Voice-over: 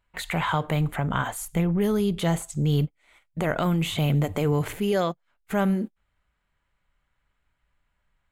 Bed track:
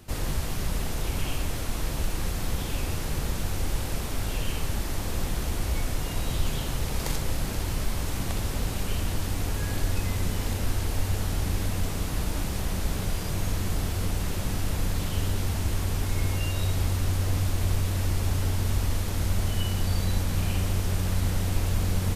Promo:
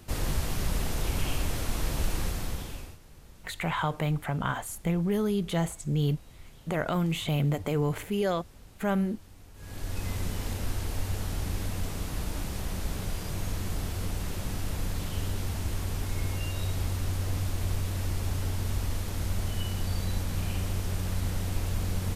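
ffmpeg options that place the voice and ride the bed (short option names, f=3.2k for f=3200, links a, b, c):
-filter_complex "[0:a]adelay=3300,volume=-4dB[a];[1:a]volume=18dB,afade=t=out:st=2.16:d=0.82:silence=0.0749894,afade=t=in:st=9.54:d=0.55:silence=0.11885[b];[a][b]amix=inputs=2:normalize=0"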